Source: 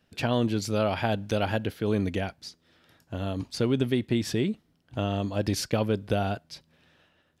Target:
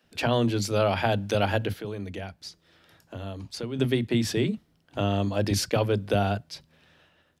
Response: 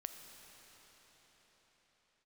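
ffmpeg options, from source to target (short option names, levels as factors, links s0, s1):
-filter_complex "[0:a]asettb=1/sr,asplit=3[s0][s1][s2];[s0]atrim=end=1.704[s3];[s1]atrim=start=1.7:end=3.76,asetpts=PTS-STARTPTS,afade=t=in:d=0.004:c=qsin,afade=t=out:st=2.056:d=0.004:c=qsin,acompressor=threshold=0.01:ratio=2[s4];[s2]atrim=start=3.756[s5];[s3][s4]acrossfade=d=0.004:c1=hsin:c2=qsin[s6];[s6][s5]acrossfade=d=0.004:c1=qsin:c2=hsin,acrossover=split=230[s7][s8];[s7]adelay=30[s9];[s9][s8]amix=inputs=2:normalize=0,volume=1.41"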